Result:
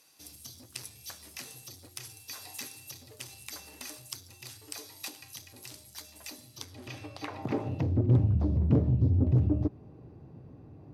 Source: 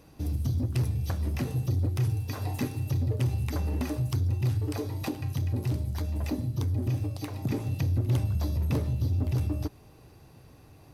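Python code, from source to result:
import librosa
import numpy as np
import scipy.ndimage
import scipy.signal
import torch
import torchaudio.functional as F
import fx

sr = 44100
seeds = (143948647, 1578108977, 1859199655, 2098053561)

y = fx.filter_sweep_bandpass(x, sr, from_hz=8000.0, to_hz=210.0, start_s=6.43, end_s=8.19, q=0.75)
y = fx.doppler_dist(y, sr, depth_ms=0.43)
y = y * 10.0 ** (6.5 / 20.0)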